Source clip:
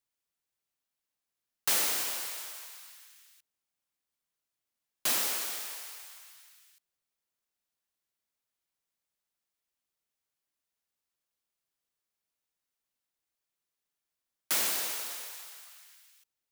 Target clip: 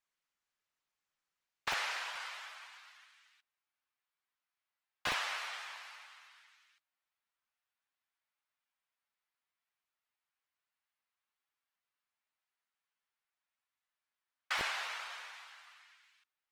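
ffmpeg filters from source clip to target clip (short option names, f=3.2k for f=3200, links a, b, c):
-filter_complex "[0:a]acrossover=split=760|1100[a][b][c];[a]acrusher=bits=5:mix=0:aa=0.000001[d];[c]lowpass=2.3k[e];[d][b][e]amix=inputs=3:normalize=0,volume=5dB" -ar 48000 -c:a libopus -b:a 16k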